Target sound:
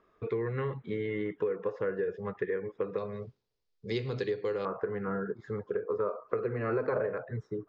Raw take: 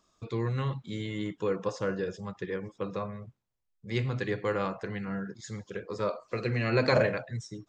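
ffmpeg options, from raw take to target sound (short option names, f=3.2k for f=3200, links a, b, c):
-af "equalizer=f=430:t=o:w=0.49:g=14.5,acompressor=threshold=-30dB:ratio=5,asetnsamples=n=441:p=0,asendcmd='2.98 lowpass f 4700;4.65 lowpass f 1300',lowpass=f=1.9k:t=q:w=2.6"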